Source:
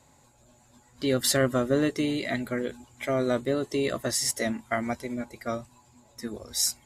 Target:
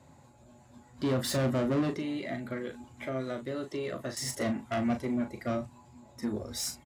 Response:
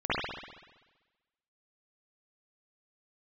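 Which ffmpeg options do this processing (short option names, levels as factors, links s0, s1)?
-filter_complex "[0:a]asettb=1/sr,asplit=3[s0][s1][s2];[s0]atrim=end=1.954[s3];[s1]atrim=start=1.95:end=4.17,asetpts=PTS-STARTPTS,afade=t=in:d=0.004:c=qsin,afade=t=out:st=2.216:d=0.004:c=qsin,acrossover=split=700|1600|5800[s4][s5][s6][s7];[s4]acompressor=threshold=0.01:ratio=4[s8];[s5]acompressor=threshold=0.00708:ratio=4[s9];[s6]acompressor=threshold=0.00631:ratio=4[s10];[s7]acompressor=threshold=0.00126:ratio=4[s11];[s8][s9][s10][s11]amix=inputs=4:normalize=0[s12];[s2]atrim=start=4.166[s13];[s3][s12]acrossfade=d=0.004:c1=hsin:c2=qsin[s14];[s14][s13]acrossfade=d=0.004:c1=qsin:c2=hsin,highshelf=f=3800:g=-9,asoftclip=type=tanh:threshold=0.0355,highpass=78,lowshelf=f=470:g=6.5,bandreject=f=450:w=12,asplit=2[s15][s16];[s16]adelay=38,volume=0.398[s17];[s15][s17]amix=inputs=2:normalize=0"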